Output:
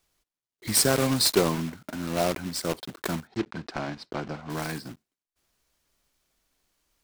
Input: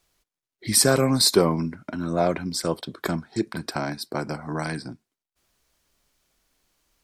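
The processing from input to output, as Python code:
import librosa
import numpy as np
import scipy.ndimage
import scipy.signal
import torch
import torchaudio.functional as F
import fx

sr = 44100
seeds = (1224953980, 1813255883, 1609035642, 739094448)

y = fx.block_float(x, sr, bits=3)
y = fx.air_absorb(y, sr, metres=150.0, at=(3.27, 4.5))
y = F.gain(torch.from_numpy(y), -4.0).numpy()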